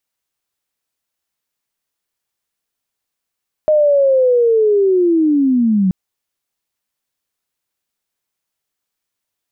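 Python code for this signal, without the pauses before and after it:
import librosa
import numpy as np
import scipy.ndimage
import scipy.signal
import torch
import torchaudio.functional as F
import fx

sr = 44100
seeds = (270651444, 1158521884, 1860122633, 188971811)

y = fx.chirp(sr, length_s=2.23, from_hz=620.0, to_hz=180.0, law='linear', from_db=-8.5, to_db=-10.5)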